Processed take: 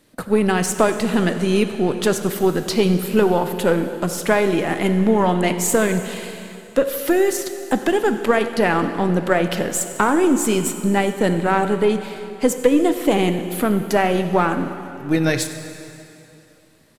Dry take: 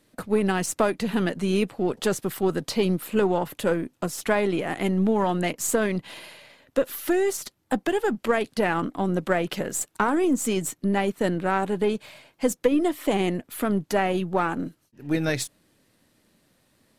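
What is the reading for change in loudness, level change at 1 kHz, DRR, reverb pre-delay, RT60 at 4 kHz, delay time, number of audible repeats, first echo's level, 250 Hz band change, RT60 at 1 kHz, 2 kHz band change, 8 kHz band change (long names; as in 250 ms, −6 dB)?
+6.0 dB, +6.0 dB, 8.0 dB, 6 ms, 2.6 s, 93 ms, 1, −18.5 dB, +6.0 dB, 2.8 s, +6.0 dB, +6.0 dB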